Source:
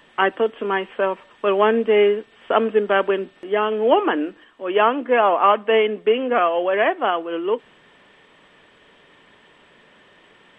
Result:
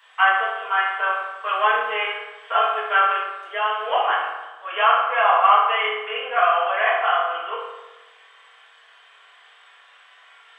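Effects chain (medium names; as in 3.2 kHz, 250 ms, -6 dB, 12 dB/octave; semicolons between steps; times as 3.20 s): high-pass 850 Hz 24 dB/octave; reverberation RT60 1.1 s, pre-delay 3 ms, DRR -9.5 dB; trim -5.5 dB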